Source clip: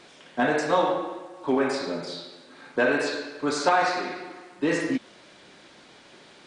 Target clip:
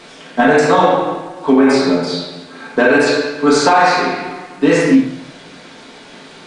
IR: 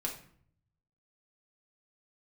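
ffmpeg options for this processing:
-filter_complex "[1:a]atrim=start_sample=2205[link_01];[0:a][link_01]afir=irnorm=-1:irlink=0,alimiter=level_in=12.5dB:limit=-1dB:release=50:level=0:latency=1,volume=-1dB"

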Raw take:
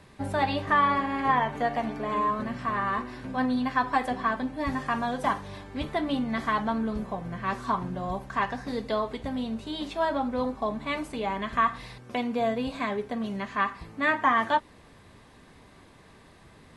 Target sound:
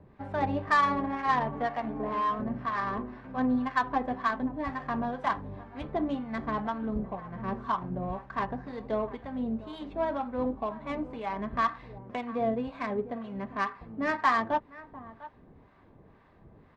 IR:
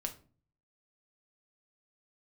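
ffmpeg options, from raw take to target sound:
-filter_complex "[0:a]asplit=2[link_01][link_02];[link_02]adelay=699.7,volume=-16dB,highshelf=frequency=4000:gain=-15.7[link_03];[link_01][link_03]amix=inputs=2:normalize=0,acrossover=split=780[link_04][link_05];[link_04]aeval=exprs='val(0)*(1-0.7/2+0.7/2*cos(2*PI*2*n/s))':channel_layout=same[link_06];[link_05]aeval=exprs='val(0)*(1-0.7/2-0.7/2*cos(2*PI*2*n/s))':channel_layout=same[link_07];[link_06][link_07]amix=inputs=2:normalize=0,adynamicsmooth=sensitivity=1.5:basefreq=1500,volume=1dB"

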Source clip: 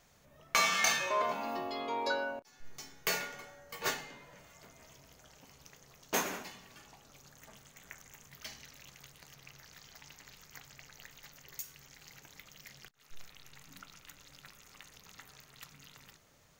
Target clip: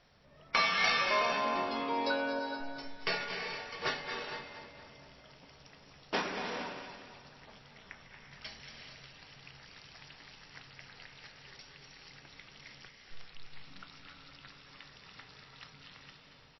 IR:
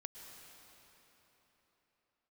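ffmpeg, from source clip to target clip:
-filter_complex "[0:a]asplit=2[link_01][link_02];[link_02]asoftclip=type=tanh:threshold=-24dB,volume=-6dB[link_03];[link_01][link_03]amix=inputs=2:normalize=0,aecho=1:1:231|462|693|924|1155:0.316|0.149|0.0699|0.0328|0.0154[link_04];[1:a]atrim=start_sample=2205,afade=type=out:start_time=0.29:duration=0.01,atrim=end_sample=13230,asetrate=22050,aresample=44100[link_05];[link_04][link_05]afir=irnorm=-1:irlink=0" -ar 16000 -c:a libmp3lame -b:a 24k

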